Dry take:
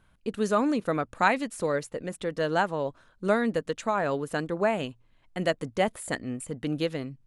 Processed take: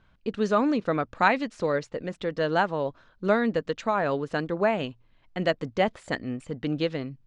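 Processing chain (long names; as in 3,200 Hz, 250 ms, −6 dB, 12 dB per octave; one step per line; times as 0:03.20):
low-pass filter 5,600 Hz 24 dB per octave
level +1.5 dB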